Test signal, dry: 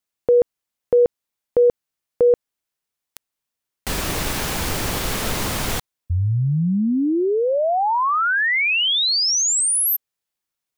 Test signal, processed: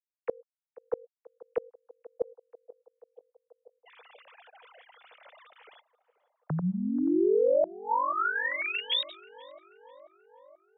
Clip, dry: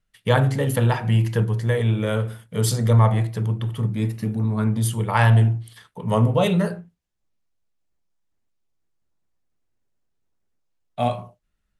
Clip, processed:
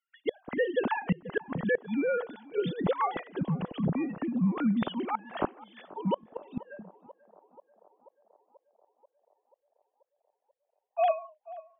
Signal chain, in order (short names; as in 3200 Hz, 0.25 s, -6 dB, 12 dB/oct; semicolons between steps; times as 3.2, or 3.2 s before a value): sine-wave speech; flipped gate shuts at -9 dBFS, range -33 dB; narrowing echo 0.485 s, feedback 74%, band-pass 650 Hz, level -18 dB; gain -7.5 dB